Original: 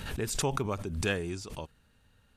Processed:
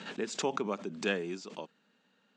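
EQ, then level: Chebyshev band-pass 190–7500 Hz, order 4; air absorption 61 m; 0.0 dB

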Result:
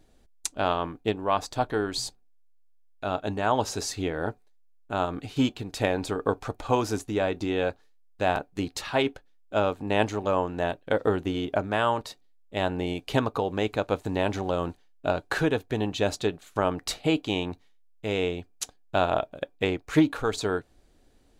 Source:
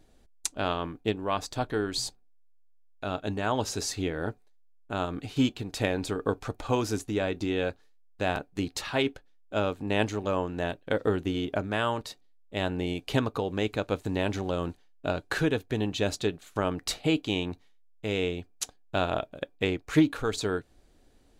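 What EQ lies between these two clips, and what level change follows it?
dynamic EQ 820 Hz, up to +6 dB, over -41 dBFS, Q 0.99; 0.0 dB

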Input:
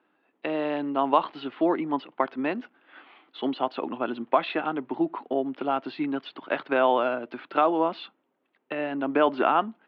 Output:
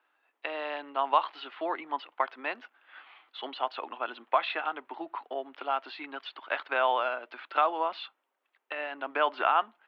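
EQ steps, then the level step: HPF 840 Hz 12 dB/oct; 0.0 dB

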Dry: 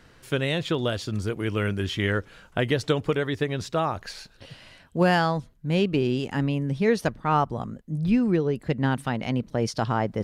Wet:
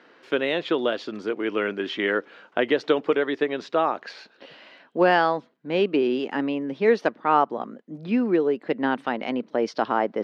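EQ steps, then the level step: HPF 270 Hz 24 dB/oct; air absorption 230 m; +4.5 dB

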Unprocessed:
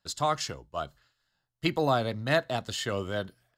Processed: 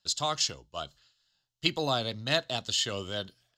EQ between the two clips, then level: band shelf 4500 Hz +11.5 dB; -4.5 dB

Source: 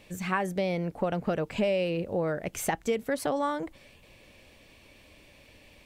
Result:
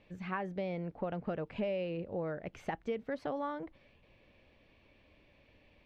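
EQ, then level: air absorption 250 m; -7.5 dB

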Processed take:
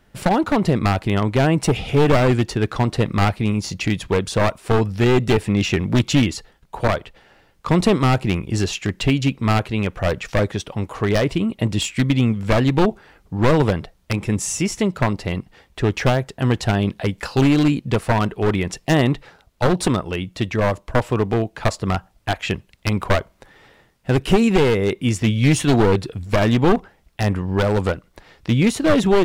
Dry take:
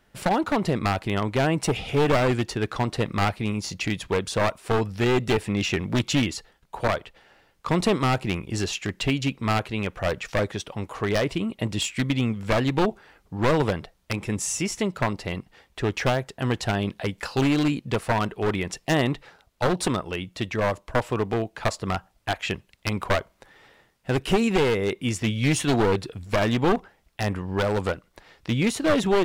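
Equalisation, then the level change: low shelf 330 Hz +5.5 dB; +3.0 dB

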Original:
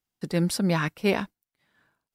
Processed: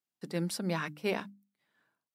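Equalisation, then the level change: HPF 150 Hz 12 dB/oct; notches 50/100/150/200/250/300 Hz; -7.5 dB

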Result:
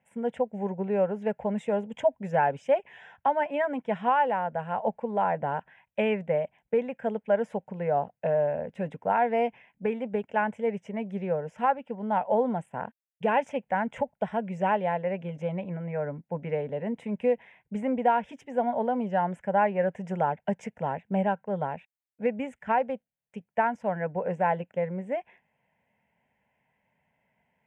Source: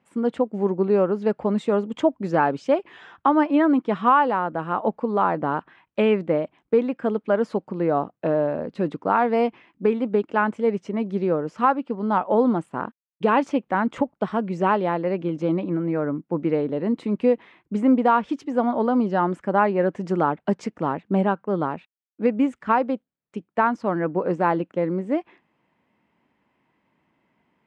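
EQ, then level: fixed phaser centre 1200 Hz, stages 6; -1.5 dB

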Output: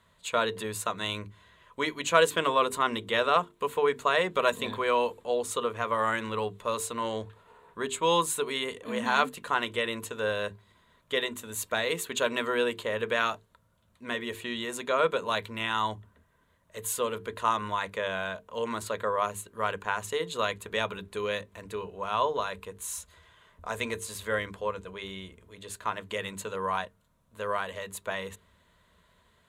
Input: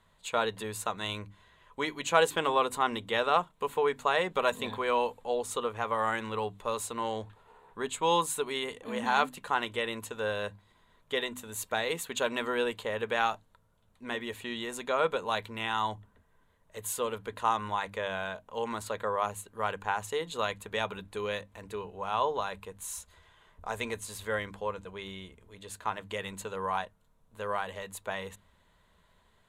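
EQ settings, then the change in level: HPF 41 Hz; notches 50/100/150/200/250/300/350/400/450 Hz; notch 810 Hz, Q 5.1; +3.0 dB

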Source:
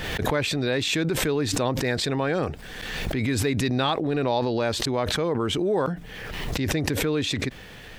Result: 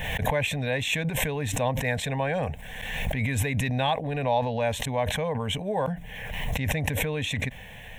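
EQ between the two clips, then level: fixed phaser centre 1300 Hz, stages 6; +2.0 dB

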